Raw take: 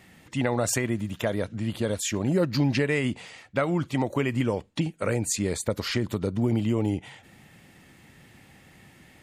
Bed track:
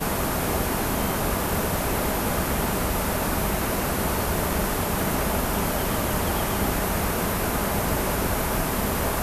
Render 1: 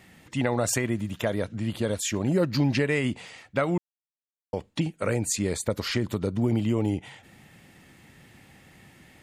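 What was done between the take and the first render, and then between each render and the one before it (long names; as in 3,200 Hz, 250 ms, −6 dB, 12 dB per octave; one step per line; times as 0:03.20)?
0:03.78–0:04.53: silence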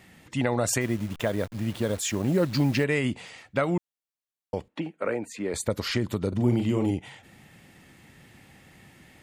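0:00.81–0:02.84: hold until the input has moved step −40 dBFS
0:04.68–0:05.54: three-way crossover with the lows and the highs turned down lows −21 dB, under 220 Hz, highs −18 dB, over 2,700 Hz
0:06.28–0:06.91: double-tracking delay 41 ms −6 dB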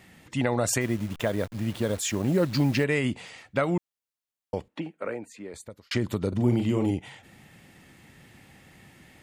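0:04.55–0:05.91: fade out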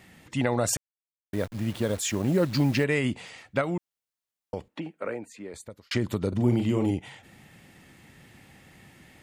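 0:00.77–0:01.33: silence
0:03.61–0:04.98: downward compressor 1.5 to 1, threshold −31 dBFS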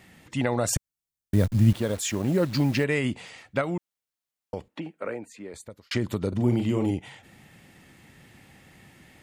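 0:00.76–0:01.73: bass and treble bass +14 dB, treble +6 dB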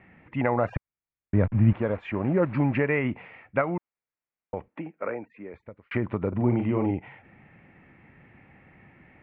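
Chebyshev low-pass filter 2,400 Hz, order 4
dynamic equaliser 960 Hz, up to +5 dB, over −42 dBFS, Q 1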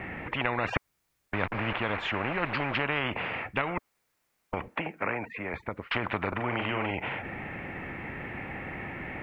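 every bin compressed towards the loudest bin 4 to 1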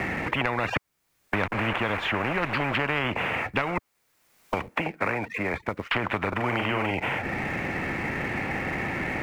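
leveller curve on the samples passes 1
multiband upward and downward compressor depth 70%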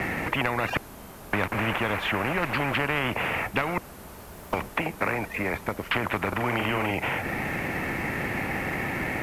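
mix in bed track −19 dB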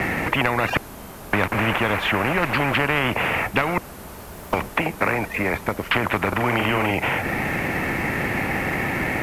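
level +5.5 dB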